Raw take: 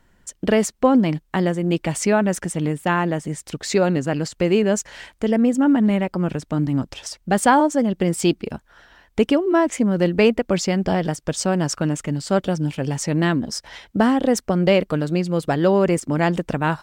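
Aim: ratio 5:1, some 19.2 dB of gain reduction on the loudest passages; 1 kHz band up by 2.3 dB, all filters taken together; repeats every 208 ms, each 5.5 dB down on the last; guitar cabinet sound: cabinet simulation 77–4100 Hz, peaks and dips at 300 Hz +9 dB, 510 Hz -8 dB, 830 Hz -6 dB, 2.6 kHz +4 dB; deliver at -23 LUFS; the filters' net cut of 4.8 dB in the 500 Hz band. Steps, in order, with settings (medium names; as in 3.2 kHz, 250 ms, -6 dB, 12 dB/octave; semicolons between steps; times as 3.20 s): peaking EQ 500 Hz -7 dB; peaking EQ 1 kHz +9 dB; compression 5:1, threshold -28 dBFS; cabinet simulation 77–4100 Hz, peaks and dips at 300 Hz +9 dB, 510 Hz -8 dB, 830 Hz -6 dB, 2.6 kHz +4 dB; feedback delay 208 ms, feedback 53%, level -5.5 dB; trim +6 dB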